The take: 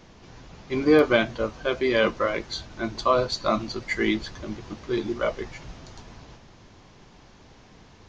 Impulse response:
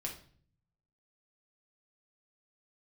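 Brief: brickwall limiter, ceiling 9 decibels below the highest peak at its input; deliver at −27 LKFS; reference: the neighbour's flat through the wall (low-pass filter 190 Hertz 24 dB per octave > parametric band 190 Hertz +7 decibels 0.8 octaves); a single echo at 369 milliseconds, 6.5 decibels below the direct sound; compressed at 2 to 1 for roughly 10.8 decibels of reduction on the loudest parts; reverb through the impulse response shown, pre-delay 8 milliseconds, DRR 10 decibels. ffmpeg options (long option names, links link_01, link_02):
-filter_complex "[0:a]acompressor=threshold=-33dB:ratio=2,alimiter=level_in=1dB:limit=-24dB:level=0:latency=1,volume=-1dB,aecho=1:1:369:0.473,asplit=2[link_01][link_02];[1:a]atrim=start_sample=2205,adelay=8[link_03];[link_02][link_03]afir=irnorm=-1:irlink=0,volume=-9.5dB[link_04];[link_01][link_04]amix=inputs=2:normalize=0,lowpass=frequency=190:width=0.5412,lowpass=frequency=190:width=1.3066,equalizer=frequency=190:width_type=o:width=0.8:gain=7,volume=17.5dB"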